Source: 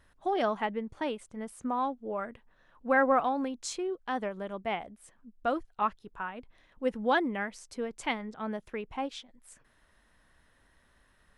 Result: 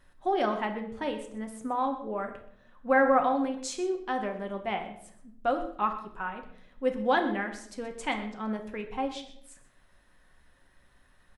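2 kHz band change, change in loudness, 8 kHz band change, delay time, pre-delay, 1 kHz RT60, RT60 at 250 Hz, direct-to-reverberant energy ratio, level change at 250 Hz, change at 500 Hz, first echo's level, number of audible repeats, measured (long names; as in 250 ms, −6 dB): +1.0 dB, +2.0 dB, +1.0 dB, 126 ms, 4 ms, 0.55 s, 1.0 s, 3.5 dB, +2.0 dB, +2.5 dB, −16.0 dB, 1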